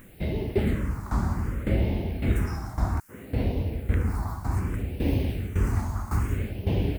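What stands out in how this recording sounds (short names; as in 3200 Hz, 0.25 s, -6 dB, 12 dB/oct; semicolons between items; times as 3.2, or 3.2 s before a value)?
tremolo saw down 1.8 Hz, depth 80%; a quantiser's noise floor 10-bit, dither triangular; phasing stages 4, 0.63 Hz, lowest notch 460–1300 Hz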